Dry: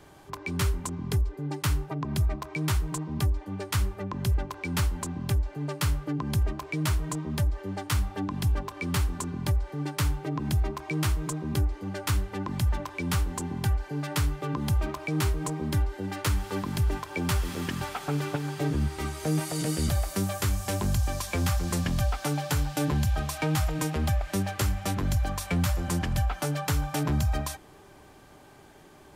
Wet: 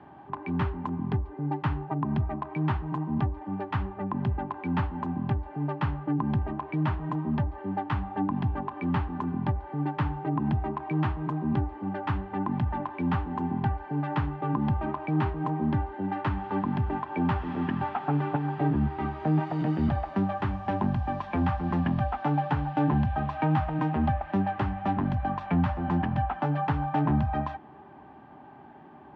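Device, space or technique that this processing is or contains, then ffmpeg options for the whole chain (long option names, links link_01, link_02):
bass cabinet: -af "highpass=frequency=79:width=0.5412,highpass=frequency=79:width=1.3066,equalizer=frequency=100:width_type=q:width=4:gain=-7,equalizer=frequency=240:width_type=q:width=4:gain=6,equalizer=frequency=490:width_type=q:width=4:gain=-10,equalizer=frequency=830:width_type=q:width=4:gain=8,equalizer=frequency=1400:width_type=q:width=4:gain=-4,equalizer=frequency=2200:width_type=q:width=4:gain=-8,lowpass=frequency=2300:width=0.5412,lowpass=frequency=2300:width=1.3066,volume=2.5dB"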